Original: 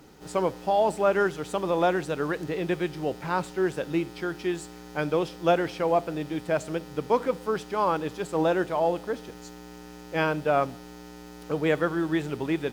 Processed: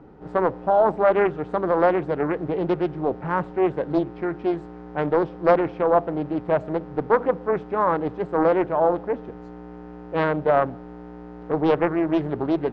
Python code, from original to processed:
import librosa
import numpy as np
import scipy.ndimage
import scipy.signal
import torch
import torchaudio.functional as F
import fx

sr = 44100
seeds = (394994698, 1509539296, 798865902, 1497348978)

y = scipy.signal.sosfilt(scipy.signal.butter(2, 1100.0, 'lowpass', fs=sr, output='sos'), x)
y = fx.doppler_dist(y, sr, depth_ms=0.54)
y = y * 10.0 ** (5.5 / 20.0)